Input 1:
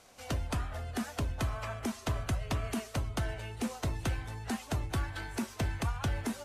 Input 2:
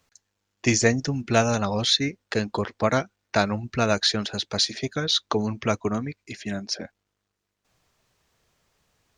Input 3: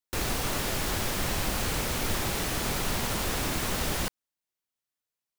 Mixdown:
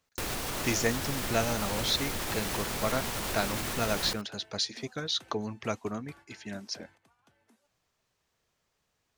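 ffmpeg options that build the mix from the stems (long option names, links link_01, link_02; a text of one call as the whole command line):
ffmpeg -i stem1.wav -i stem2.wav -i stem3.wav -filter_complex "[0:a]highpass=180,adelay=1150,volume=-16.5dB,asplit=2[link_01][link_02];[link_02]volume=-12.5dB[link_03];[1:a]volume=-8dB,asplit=2[link_04][link_05];[2:a]alimiter=limit=-24dB:level=0:latency=1:release=141,adelay=50,volume=1dB,asplit=2[link_06][link_07];[link_07]volume=-14dB[link_08];[link_05]apad=whole_len=334915[link_09];[link_01][link_09]sidechaingate=range=-33dB:threshold=-54dB:ratio=16:detection=peak[link_10];[link_03][link_08]amix=inputs=2:normalize=0,aecho=0:1:81:1[link_11];[link_10][link_04][link_06][link_11]amix=inputs=4:normalize=0,lowshelf=frequency=190:gain=-3.5" out.wav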